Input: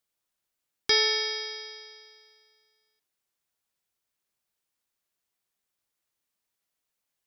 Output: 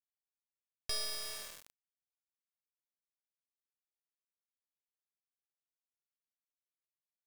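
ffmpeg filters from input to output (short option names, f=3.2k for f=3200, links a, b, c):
-filter_complex "[0:a]equalizer=f=250:t=o:w=1.9:g=-14,acrossover=split=340|440|3900[a][b][c][d];[c]acompressor=threshold=-44dB:ratio=10[e];[a][b][e][d]amix=inputs=4:normalize=0,acrusher=bits=3:dc=4:mix=0:aa=0.000001,volume=-6dB"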